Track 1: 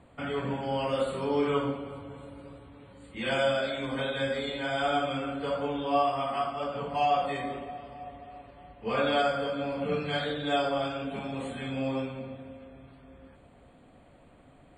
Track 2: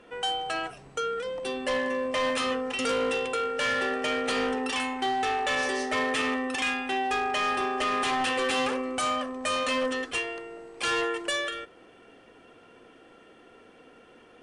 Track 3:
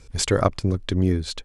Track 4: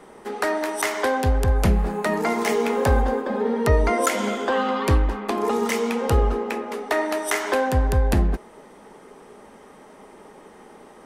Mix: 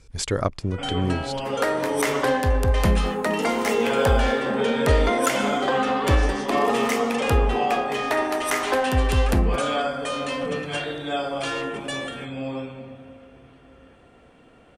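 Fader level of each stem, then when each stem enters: +0.5, −2.5, −4.0, −1.0 decibels; 0.60, 0.60, 0.00, 1.20 seconds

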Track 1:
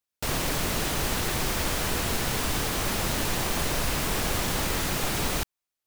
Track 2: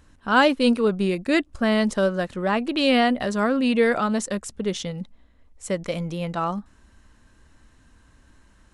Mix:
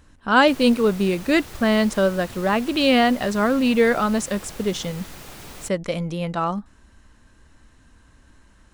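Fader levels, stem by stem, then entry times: −12.5, +2.0 decibels; 0.25, 0.00 seconds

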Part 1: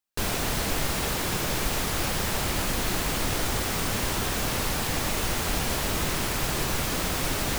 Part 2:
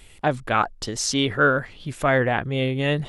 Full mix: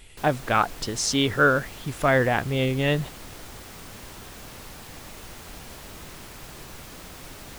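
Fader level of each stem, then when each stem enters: −14.5, −0.5 decibels; 0.00, 0.00 seconds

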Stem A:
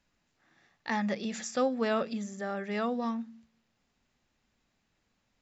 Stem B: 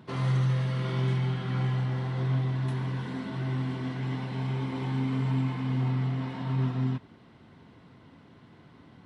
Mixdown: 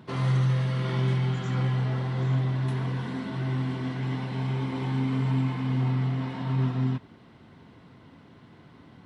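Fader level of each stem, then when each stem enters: −15.5, +2.0 decibels; 0.00, 0.00 seconds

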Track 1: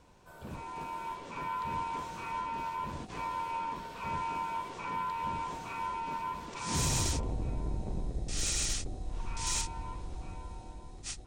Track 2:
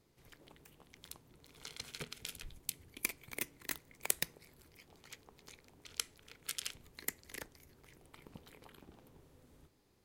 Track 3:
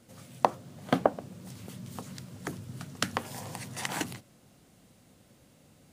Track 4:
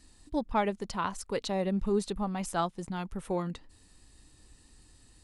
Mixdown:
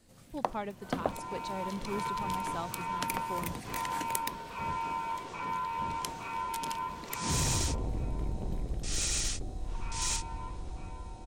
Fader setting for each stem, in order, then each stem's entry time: +0.5, −2.0, −7.5, −9.0 decibels; 0.55, 0.05, 0.00, 0.00 seconds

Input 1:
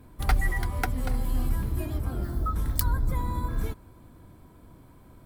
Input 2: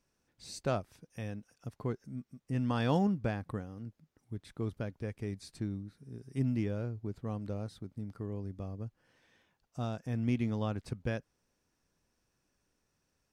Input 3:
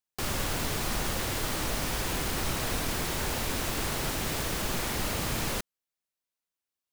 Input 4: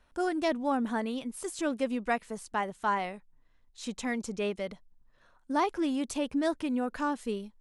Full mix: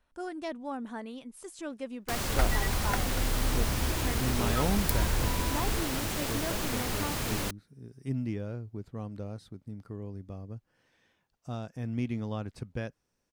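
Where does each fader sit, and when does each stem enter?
−4.0, −1.0, −2.0, −8.0 decibels; 2.10, 1.70, 1.90, 0.00 seconds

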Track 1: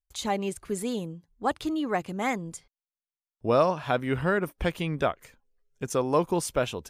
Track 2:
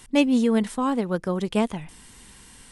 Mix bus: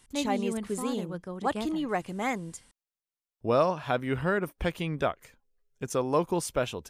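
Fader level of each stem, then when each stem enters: −2.0, −12.5 decibels; 0.00, 0.00 seconds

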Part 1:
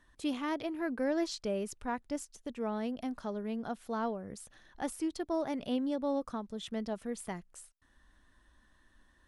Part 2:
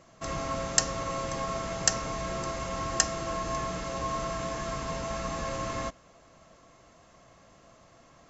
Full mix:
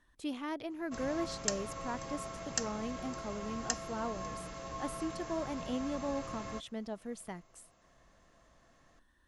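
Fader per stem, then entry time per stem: −4.0, −10.0 decibels; 0.00, 0.70 seconds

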